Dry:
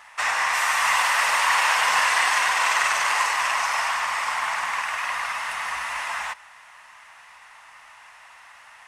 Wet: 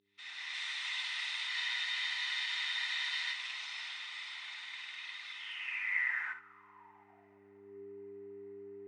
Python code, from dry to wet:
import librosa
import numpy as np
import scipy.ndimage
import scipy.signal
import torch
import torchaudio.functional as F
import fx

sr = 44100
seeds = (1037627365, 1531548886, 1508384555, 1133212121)

y = fx.fade_in_head(x, sr, length_s=0.53)
y = scipy.signal.sosfilt(scipy.signal.ellip(4, 1.0, 40, 9400.0, 'lowpass', fs=sr, output='sos'), y)
y = fx.peak_eq(y, sr, hz=2100.0, db=8.0, octaves=0.46)
y = fx.notch_comb(y, sr, f0_hz=560.0)
y = fx.dmg_buzz(y, sr, base_hz=100.0, harmonics=4, level_db=-39.0, tilt_db=-1, odd_only=False)
y = fx.room_early_taps(y, sr, ms=(38, 61), db=(-15.0, -10.0))
y = fx.filter_sweep_bandpass(y, sr, from_hz=3700.0, to_hz=390.0, start_s=5.32, end_s=7.83, q=7.8)
y = fx.spec_freeze(y, sr, seeds[0], at_s=1.52, hold_s=1.81)
y = F.gain(torch.from_numpy(y), -1.5).numpy()